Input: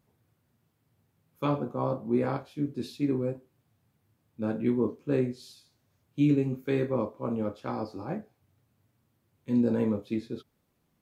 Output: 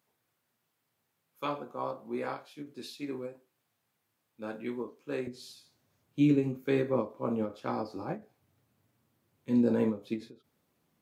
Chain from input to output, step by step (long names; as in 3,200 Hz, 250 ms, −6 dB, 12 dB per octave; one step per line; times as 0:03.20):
high-pass filter 990 Hz 6 dB per octave, from 0:05.27 170 Hz
every ending faded ahead of time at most 200 dB per second
level +1 dB